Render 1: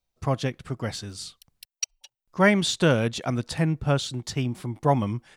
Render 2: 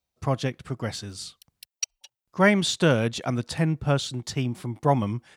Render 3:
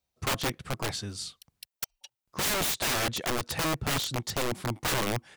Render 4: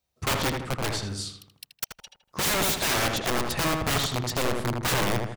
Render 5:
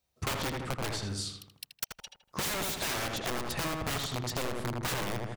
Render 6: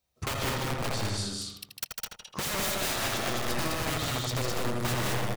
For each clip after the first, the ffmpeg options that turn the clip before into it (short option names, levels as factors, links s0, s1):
-af "highpass=52"
-af "aeval=exprs='(mod(14.1*val(0)+1,2)-1)/14.1':c=same"
-filter_complex "[0:a]asplit=2[s0][s1];[s1]adelay=80,lowpass=f=2200:p=1,volume=0.708,asplit=2[s2][s3];[s3]adelay=80,lowpass=f=2200:p=1,volume=0.47,asplit=2[s4][s5];[s5]adelay=80,lowpass=f=2200:p=1,volume=0.47,asplit=2[s6][s7];[s7]adelay=80,lowpass=f=2200:p=1,volume=0.47,asplit=2[s8][s9];[s9]adelay=80,lowpass=f=2200:p=1,volume=0.47,asplit=2[s10][s11];[s11]adelay=80,lowpass=f=2200:p=1,volume=0.47[s12];[s0][s2][s4][s6][s8][s10][s12]amix=inputs=7:normalize=0,volume=1.33"
-af "acompressor=threshold=0.0282:ratio=6"
-af "aecho=1:1:81.63|151.6|207:0.316|0.631|0.794"